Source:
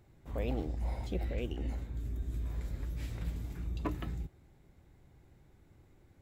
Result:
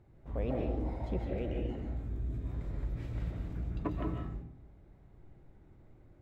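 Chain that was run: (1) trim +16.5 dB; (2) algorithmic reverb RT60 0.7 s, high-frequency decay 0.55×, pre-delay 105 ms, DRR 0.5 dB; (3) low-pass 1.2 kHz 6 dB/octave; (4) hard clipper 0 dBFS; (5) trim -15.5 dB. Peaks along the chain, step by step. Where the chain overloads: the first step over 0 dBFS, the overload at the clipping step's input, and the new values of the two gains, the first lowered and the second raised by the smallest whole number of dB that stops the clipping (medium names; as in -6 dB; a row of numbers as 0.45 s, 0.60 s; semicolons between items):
-4.0 dBFS, -4.5 dBFS, -5.5 dBFS, -5.5 dBFS, -21.0 dBFS; nothing clips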